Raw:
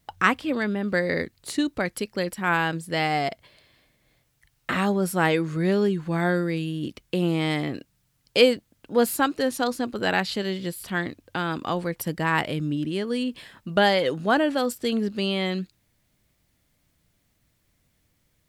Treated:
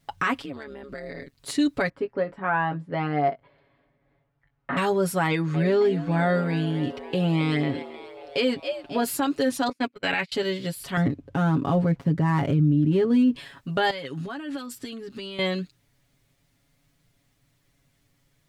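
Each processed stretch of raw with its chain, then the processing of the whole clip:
0.42–1.38 s: compression 8:1, threshold -31 dBFS + AM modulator 140 Hz, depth 75%
1.89–4.77 s: low-pass 1.2 kHz + bass shelf 210 Hz -6.5 dB + doubling 20 ms -9 dB
5.27–9.03 s: treble shelf 6.8 kHz -10 dB + frequency-shifting echo 269 ms, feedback 61%, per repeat +88 Hz, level -16 dB
9.69–10.32 s: high-pass 59 Hz + gate -27 dBFS, range -35 dB + peaking EQ 2.3 kHz +14.5 dB 0.49 oct
10.97–13.36 s: dead-time distortion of 0.068 ms + high-pass 76 Hz + tilt EQ -4 dB/octave
13.90–15.39 s: compression 16:1, threshold -29 dBFS + peaking EQ 600 Hz -7 dB 1.2 oct
whole clip: treble shelf 11 kHz -7.5 dB; comb 7.2 ms, depth 84%; peak limiter -14 dBFS

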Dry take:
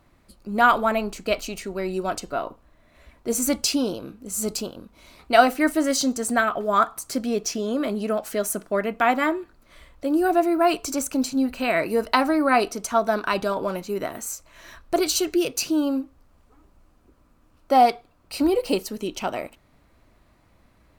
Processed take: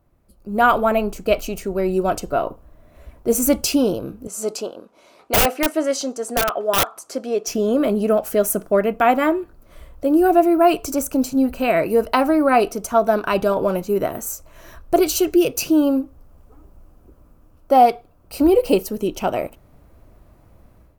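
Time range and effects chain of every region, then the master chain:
4.27–7.47 s: band-pass 400–7200 Hz + integer overflow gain 13.5 dB
whole clip: ten-band graphic EQ 250 Hz -5 dB, 1 kHz -5 dB, 2 kHz -10 dB, 4 kHz -11 dB, 8 kHz -7 dB; level rider gain up to 12 dB; dynamic bell 2.6 kHz, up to +5 dB, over -37 dBFS, Q 1.5; trim -1 dB

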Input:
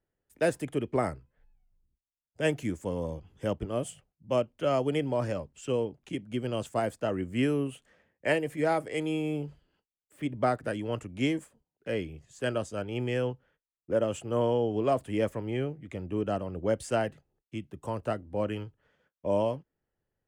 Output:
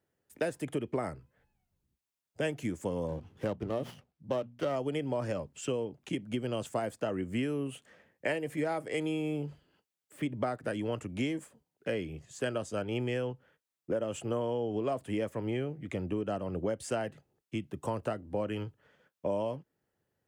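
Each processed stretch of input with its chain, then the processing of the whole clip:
3.08–4.76 s: treble shelf 4.6 kHz -4.5 dB + hum notches 60/120/180/240 Hz + sliding maximum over 5 samples
whole clip: high-pass 91 Hz; compression, threshold -34 dBFS; trim +4.5 dB

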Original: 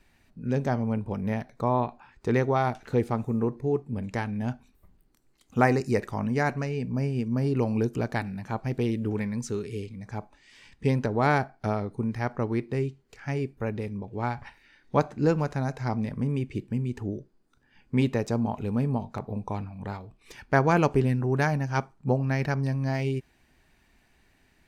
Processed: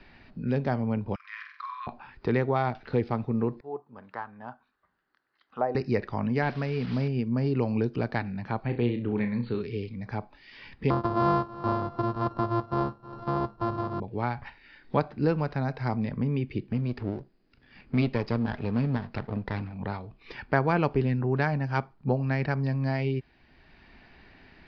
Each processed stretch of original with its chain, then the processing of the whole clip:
1.15–1.87 s: compression, threshold -25 dBFS + brick-wall FIR high-pass 1 kHz + flutter echo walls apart 8.1 m, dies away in 0.5 s
3.60–5.75 s: peaking EQ 2.3 kHz -10 dB 0.52 oct + auto-wah 610–1700 Hz, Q 2.5, down, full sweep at -18 dBFS
6.42–7.08 s: one-bit delta coder 64 kbps, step -37.5 dBFS + tape noise reduction on one side only encoder only
8.63–9.61 s: brick-wall FIR low-pass 4.6 kHz + flutter echo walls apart 5.7 m, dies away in 0.27 s
10.90–14.00 s: sorted samples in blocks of 128 samples + resonant high shelf 1.6 kHz -11.5 dB, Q 3 + feedback delay 320 ms, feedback 45%, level -19.5 dB
16.72–19.77 s: comb filter that takes the minimum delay 0.44 ms + dynamic bell 7.4 kHz, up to +7 dB, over -59 dBFS, Q 0.81
whole clip: elliptic low-pass 4.9 kHz, stop band 40 dB; three bands compressed up and down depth 40%

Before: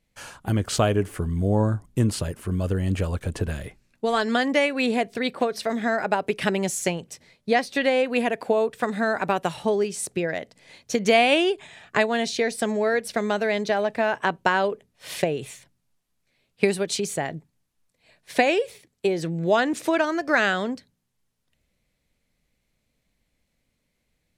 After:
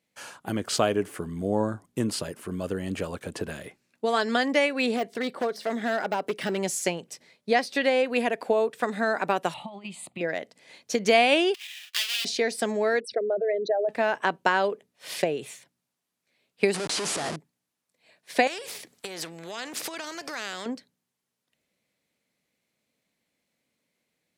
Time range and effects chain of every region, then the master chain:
4.96–6.58 s: band-stop 2.5 kHz, Q 11 + de-esser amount 85% + hard clipper -20 dBFS
9.54–10.21 s: compressor with a negative ratio -25 dBFS, ratio -0.5 + distance through air 65 m + static phaser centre 1.6 kHz, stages 6
11.54–12.25 s: square wave that keeps the level + resonant high-pass 2.9 kHz, resonance Q 3.4 + compression 2:1, threshold -26 dBFS
13.00–13.89 s: resonances exaggerated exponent 3 + distance through air 51 m
16.74–17.36 s: high-pass 62 Hz 24 dB/octave + Schmitt trigger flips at -39 dBFS + careless resampling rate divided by 2×, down none, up filtered
18.47–20.66 s: compression 4:1, threshold -29 dBFS + spectrum-flattening compressor 2:1
whole clip: high-pass 210 Hz 12 dB/octave; dynamic bell 4.9 kHz, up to +5 dB, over -51 dBFS, Q 6; trim -1.5 dB

